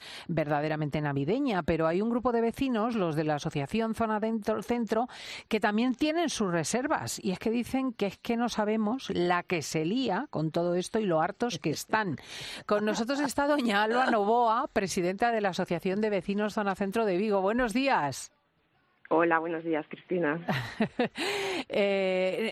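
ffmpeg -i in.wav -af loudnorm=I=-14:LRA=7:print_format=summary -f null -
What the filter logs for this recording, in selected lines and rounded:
Input Integrated:    -29.2 LUFS
Input True Peak:     -10.5 dBTP
Input LRA:             2.2 LU
Input Threshold:     -39.3 LUFS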